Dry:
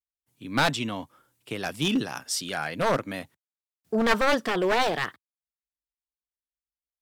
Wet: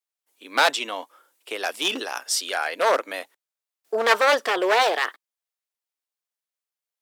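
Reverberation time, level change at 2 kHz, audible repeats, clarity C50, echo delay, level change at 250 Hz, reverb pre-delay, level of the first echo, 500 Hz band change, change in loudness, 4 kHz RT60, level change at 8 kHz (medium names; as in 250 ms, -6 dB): no reverb, +5.0 dB, no echo, no reverb, no echo, -8.5 dB, no reverb, no echo, +4.0 dB, +4.0 dB, no reverb, +5.0 dB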